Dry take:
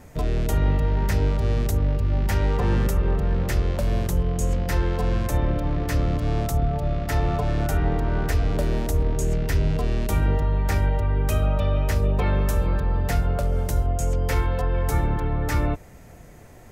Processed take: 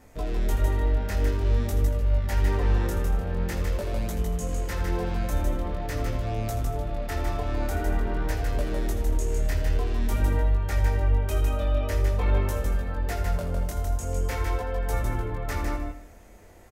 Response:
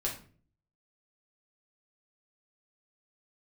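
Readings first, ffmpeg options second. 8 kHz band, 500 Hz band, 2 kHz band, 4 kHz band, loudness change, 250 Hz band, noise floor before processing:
−3.5 dB, −3.5 dB, −3.0 dB, −3.5 dB, −3.5 dB, −5.5 dB, −45 dBFS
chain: -filter_complex "[0:a]equalizer=frequency=140:width_type=o:width=0.46:gain=-14.5,asplit=2[link_01][link_02];[link_02]aecho=0:1:155|310|465:0.596|0.0953|0.0152[link_03];[link_01][link_03]amix=inputs=2:normalize=0,flanger=delay=18.5:depth=5.7:speed=0.47,asplit=2[link_04][link_05];[link_05]aecho=0:1:81:0.266[link_06];[link_04][link_06]amix=inputs=2:normalize=0,volume=-2dB"

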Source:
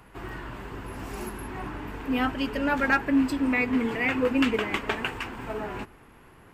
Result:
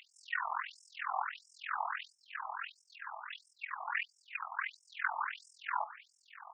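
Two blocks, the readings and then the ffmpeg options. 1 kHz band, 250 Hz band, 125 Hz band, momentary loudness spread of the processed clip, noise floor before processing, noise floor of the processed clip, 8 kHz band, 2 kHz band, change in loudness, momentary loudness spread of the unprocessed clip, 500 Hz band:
−5.0 dB, below −40 dB, below −40 dB, 10 LU, −53 dBFS, −73 dBFS, can't be measured, −9.5 dB, −13.0 dB, 15 LU, −25.5 dB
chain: -filter_complex "[0:a]acrossover=split=3600[link_01][link_02];[link_02]acompressor=threshold=-56dB:ratio=4:attack=1:release=60[link_03];[link_01][link_03]amix=inputs=2:normalize=0,highpass=250,highshelf=frequency=6300:gain=-7.5,alimiter=limit=-21dB:level=0:latency=1:release=470,acompressor=threshold=-34dB:ratio=6,tremolo=f=42:d=0.919,asplit=2[link_04][link_05];[link_05]adelay=221.6,volume=-19dB,highshelf=frequency=4000:gain=-4.99[link_06];[link_04][link_06]amix=inputs=2:normalize=0,afftfilt=real='re*between(b*sr/1024,880*pow(7400/880,0.5+0.5*sin(2*PI*1.5*pts/sr))/1.41,880*pow(7400/880,0.5+0.5*sin(2*PI*1.5*pts/sr))*1.41)':imag='im*between(b*sr/1024,880*pow(7400/880,0.5+0.5*sin(2*PI*1.5*pts/sr))/1.41,880*pow(7400/880,0.5+0.5*sin(2*PI*1.5*pts/sr))*1.41)':win_size=1024:overlap=0.75,volume=13.5dB"

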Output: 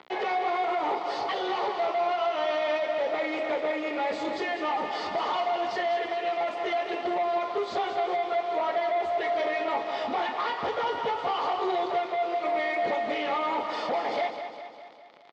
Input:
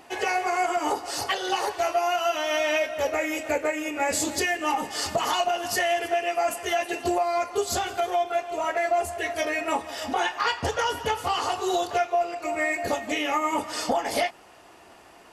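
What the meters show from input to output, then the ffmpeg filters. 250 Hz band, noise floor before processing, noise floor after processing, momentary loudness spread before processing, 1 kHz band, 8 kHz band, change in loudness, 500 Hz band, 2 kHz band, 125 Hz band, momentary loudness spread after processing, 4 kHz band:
−3.5 dB, −51 dBFS, −43 dBFS, 3 LU, −1.5 dB, below −20 dB, −2.5 dB, −1.0 dB, −5.0 dB, below −10 dB, 3 LU, −6.0 dB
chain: -af "acompressor=threshold=-26dB:ratio=2.5,acrusher=bits=6:mix=0:aa=0.000001,asoftclip=type=hard:threshold=-29.5dB,highpass=260,equalizer=frequency=280:width_type=q:width=4:gain=-6,equalizer=frequency=1600:width_type=q:width=4:gain=-9,equalizer=frequency=2700:width_type=q:width=4:gain=-9,lowpass=frequency=3400:width=0.5412,lowpass=frequency=3400:width=1.3066,aecho=1:1:202|404|606|808|1010|1212|1414:0.355|0.199|0.111|0.0623|0.0349|0.0195|0.0109,volume=5.5dB"

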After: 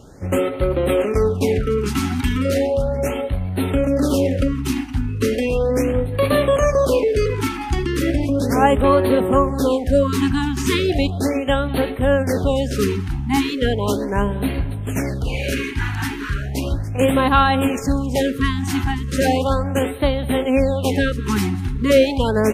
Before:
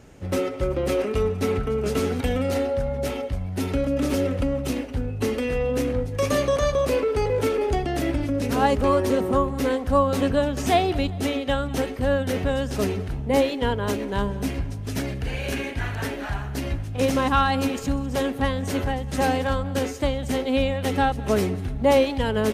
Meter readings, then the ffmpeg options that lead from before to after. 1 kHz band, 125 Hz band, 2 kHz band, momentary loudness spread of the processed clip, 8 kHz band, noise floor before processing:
+3.5 dB, +5.5 dB, +4.5 dB, 7 LU, +4.5 dB, −32 dBFS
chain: -af "afftfilt=real='re*(1-between(b*sr/1024,510*pow(6500/510,0.5+0.5*sin(2*PI*0.36*pts/sr))/1.41,510*pow(6500/510,0.5+0.5*sin(2*PI*0.36*pts/sr))*1.41))':imag='im*(1-between(b*sr/1024,510*pow(6500/510,0.5+0.5*sin(2*PI*0.36*pts/sr))/1.41,510*pow(6500/510,0.5+0.5*sin(2*PI*0.36*pts/sr))*1.41))':win_size=1024:overlap=0.75,volume=5.5dB"

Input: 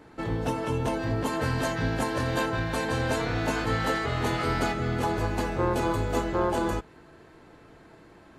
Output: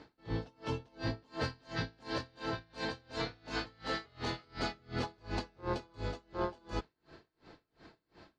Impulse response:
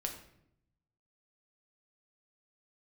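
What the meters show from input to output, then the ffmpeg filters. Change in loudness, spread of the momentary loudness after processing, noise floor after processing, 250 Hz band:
−12.0 dB, 3 LU, −83 dBFS, −12.5 dB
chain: -af "alimiter=limit=-20.5dB:level=0:latency=1:release=285,lowpass=frequency=4700:width_type=q:width=3.4,aeval=exprs='val(0)*pow(10,-33*(0.5-0.5*cos(2*PI*2.8*n/s))/20)':channel_layout=same,volume=-2.5dB"

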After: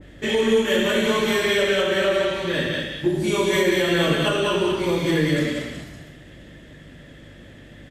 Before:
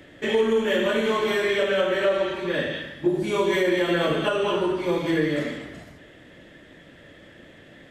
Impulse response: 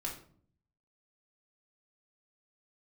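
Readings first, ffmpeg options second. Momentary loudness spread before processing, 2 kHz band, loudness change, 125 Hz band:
6 LU, +3.5 dB, +2.5 dB, +7.0 dB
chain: -filter_complex "[0:a]bass=frequency=250:gain=7,treble=frequency=4000:gain=5,aeval=exprs='val(0)+0.00562*(sin(2*PI*50*n/s)+sin(2*PI*2*50*n/s)/2+sin(2*PI*3*50*n/s)/3+sin(2*PI*4*50*n/s)/4+sin(2*PI*5*50*n/s)/5)':channel_layout=same,asplit=2[link_01][link_02];[link_02]aecho=0:1:105|192.4:0.251|0.562[link_03];[link_01][link_03]amix=inputs=2:normalize=0,adynamicequalizer=threshold=0.01:dfrequency=1800:dqfactor=0.7:tfrequency=1800:tqfactor=0.7:attack=5:release=100:ratio=0.375:range=2.5:mode=boostabove:tftype=highshelf,volume=-1dB"

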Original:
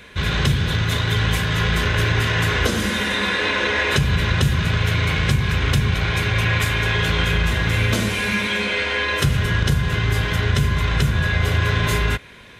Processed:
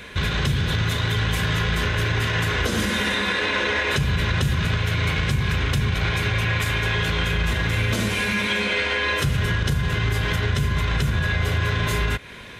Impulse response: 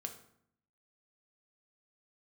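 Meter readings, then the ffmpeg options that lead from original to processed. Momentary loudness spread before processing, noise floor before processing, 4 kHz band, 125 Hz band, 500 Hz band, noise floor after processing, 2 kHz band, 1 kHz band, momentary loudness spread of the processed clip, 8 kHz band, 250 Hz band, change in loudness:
2 LU, −24 dBFS, −2.5 dB, −3.0 dB, −2.5 dB, −26 dBFS, −2.5 dB, −2.5 dB, 2 LU, −3.0 dB, −2.5 dB, −2.5 dB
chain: -af "alimiter=limit=-17.5dB:level=0:latency=1:release=186,volume=4dB"

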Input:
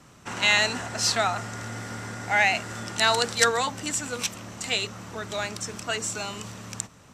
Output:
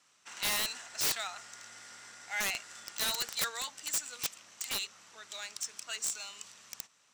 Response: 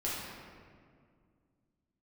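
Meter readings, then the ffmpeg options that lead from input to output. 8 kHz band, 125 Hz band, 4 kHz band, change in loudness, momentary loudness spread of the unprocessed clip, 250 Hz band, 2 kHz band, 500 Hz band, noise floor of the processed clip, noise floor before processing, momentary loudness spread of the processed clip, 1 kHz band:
−5.5 dB, −23.0 dB, −8.5 dB, −9.0 dB, 14 LU, −18.5 dB, −13.5 dB, −19.0 dB, −68 dBFS, −52 dBFS, 17 LU, −16.0 dB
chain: -af "aderivative,adynamicsmooth=sensitivity=7:basefreq=5600,aeval=exprs='(mod(15*val(0)+1,2)-1)/15':channel_layout=same"

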